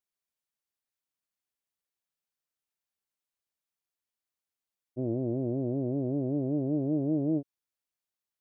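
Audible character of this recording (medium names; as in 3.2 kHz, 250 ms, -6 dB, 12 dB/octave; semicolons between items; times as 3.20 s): noise floor -92 dBFS; spectral tilt -9.5 dB/octave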